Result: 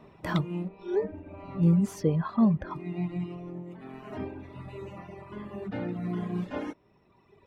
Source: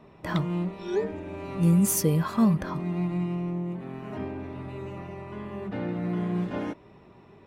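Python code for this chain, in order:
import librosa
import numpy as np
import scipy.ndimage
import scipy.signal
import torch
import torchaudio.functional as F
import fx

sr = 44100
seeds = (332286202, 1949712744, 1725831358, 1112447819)

y = fx.dereverb_blind(x, sr, rt60_s=1.9)
y = fx.curve_eq(y, sr, hz=(700.0, 4500.0, 14000.0), db=(0, -10, -28), at=(0.68, 2.71))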